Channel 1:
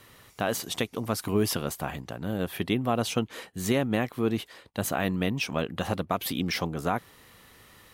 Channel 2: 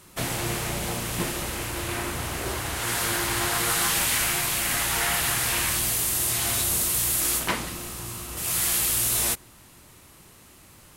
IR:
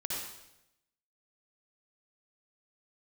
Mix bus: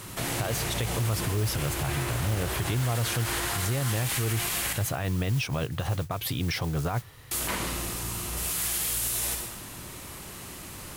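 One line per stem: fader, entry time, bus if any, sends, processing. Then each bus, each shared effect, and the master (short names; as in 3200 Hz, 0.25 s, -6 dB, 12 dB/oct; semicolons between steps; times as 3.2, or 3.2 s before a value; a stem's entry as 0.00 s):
+1.5 dB, 0.00 s, no send, resonant low shelf 160 Hz +7.5 dB, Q 3; modulation noise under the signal 19 dB
-9.0 dB, 0.00 s, muted 4.73–7.31, send -3.5 dB, overloaded stage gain 16.5 dB; fast leveller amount 50%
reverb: on, RT60 0.90 s, pre-delay 53 ms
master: limiter -19.5 dBFS, peak gain reduction 10.5 dB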